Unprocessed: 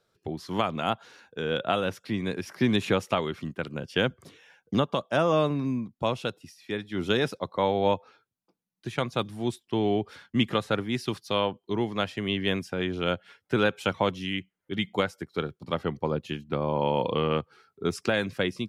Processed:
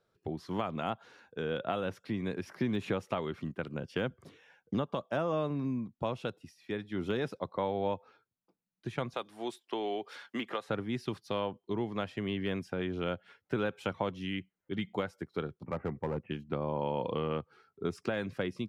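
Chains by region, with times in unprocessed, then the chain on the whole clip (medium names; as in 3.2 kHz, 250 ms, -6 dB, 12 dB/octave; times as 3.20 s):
9.14–10.69 s: high-pass 490 Hz + three bands compressed up and down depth 70%
15.65–16.31 s: steep low-pass 2.5 kHz 72 dB/octave + hard clipper -23 dBFS
whole clip: de-esser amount 80%; treble shelf 2.9 kHz -9 dB; compression 2:1, threshold -29 dBFS; trim -2.5 dB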